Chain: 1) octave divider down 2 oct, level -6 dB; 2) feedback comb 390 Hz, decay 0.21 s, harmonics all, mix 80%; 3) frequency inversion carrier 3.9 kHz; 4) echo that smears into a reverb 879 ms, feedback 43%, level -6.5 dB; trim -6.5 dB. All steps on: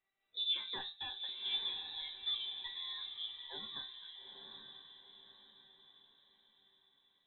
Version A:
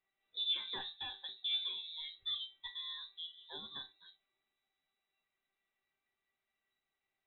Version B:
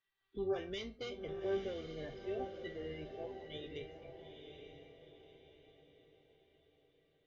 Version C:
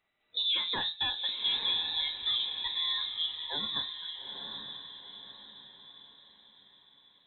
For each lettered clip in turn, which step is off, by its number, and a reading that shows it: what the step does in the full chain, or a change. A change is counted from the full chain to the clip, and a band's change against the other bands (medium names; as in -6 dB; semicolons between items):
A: 4, echo-to-direct -5.5 dB to none; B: 3, 4 kHz band -26.5 dB; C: 2, 500 Hz band -2.0 dB